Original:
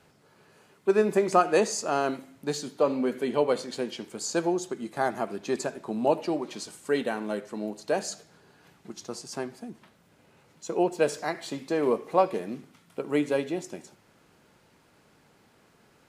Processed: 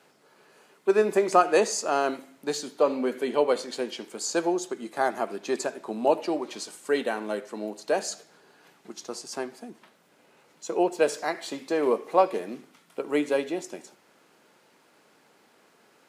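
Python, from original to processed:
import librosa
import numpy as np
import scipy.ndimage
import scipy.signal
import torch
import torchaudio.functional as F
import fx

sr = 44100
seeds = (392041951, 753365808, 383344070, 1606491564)

y = scipy.signal.sosfilt(scipy.signal.butter(2, 280.0, 'highpass', fs=sr, output='sos'), x)
y = F.gain(torch.from_numpy(y), 2.0).numpy()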